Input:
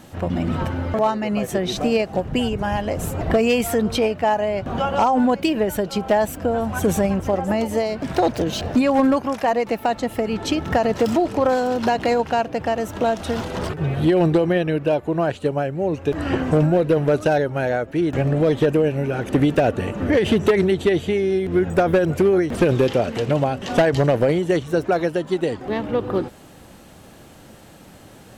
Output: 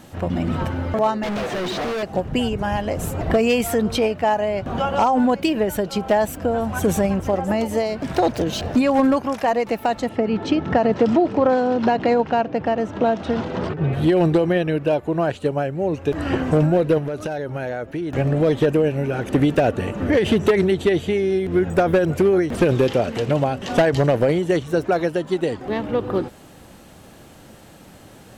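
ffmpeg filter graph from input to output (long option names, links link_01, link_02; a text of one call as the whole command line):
ffmpeg -i in.wav -filter_complex "[0:a]asettb=1/sr,asplit=3[link_01][link_02][link_03];[link_01]atrim=end=1.234[link_04];[link_02]atrim=start=1.23:end=2.03,asetpts=PTS-STARTPTS,afade=type=in:duration=0.004:curve=qsin,afade=type=out:start_time=0.796:duration=0.004:curve=qsin,asplit=2[link_05][link_06];[link_06]highpass=frequency=720:poles=1,volume=32dB,asoftclip=type=tanh:threshold=-10dB[link_07];[link_05][link_07]amix=inputs=2:normalize=0,lowpass=frequency=1200:poles=1,volume=-6dB,acrossover=split=5300[link_08][link_09];[link_09]acompressor=threshold=-51dB:ratio=4:attack=1:release=60[link_10];[link_08][link_10]amix=inputs=2:normalize=0,volume=23.5dB,asoftclip=hard,volume=-23.5dB[link_11];[link_03]atrim=start=2.026[link_12];[link_04][link_11]acrossfade=duration=0.004:curve1=hsin:curve2=qsin[link_13];[link_13][link_12]acrossfade=duration=0.004:curve1=qsin:curve2=hsin,asettb=1/sr,asplit=3[link_14][link_15][link_16];[link_14]atrim=end=10.094[link_17];[link_15]atrim=start=10.09:end=13.93,asetpts=PTS-STARTPTS,afade=type=in:duration=0.004:curve=qsin,afade=type=out:start_time=3.836:duration=0.004:curve=qsin,highpass=190,lowpass=6500,aemphasis=mode=reproduction:type=bsi[link_18];[link_16]atrim=start=13.926[link_19];[link_17][link_18]acrossfade=duration=0.004:curve1=hsin:curve2=qsin[link_20];[link_20][link_19]acrossfade=duration=0.004:curve1=qsin:curve2=hsin,asettb=1/sr,asplit=3[link_21][link_22][link_23];[link_21]atrim=end=16.984[link_24];[link_22]atrim=start=16.98:end=18.16,asetpts=PTS-STARTPTS,afade=type=in:duration=0.004:curve=qsin,afade=type=out:start_time=1.176:duration=0.004:curve=qsin,bandreject=frequency=7700:width=13,acompressor=threshold=-22dB:ratio=12:attack=3.2:release=140:knee=1:detection=peak[link_25];[link_23]atrim=start=18.156[link_26];[link_24][link_25]acrossfade=duration=0.004:curve1=hsin:curve2=qsin[link_27];[link_27][link_26]acrossfade=duration=0.004:curve1=qsin:curve2=hsin" out.wav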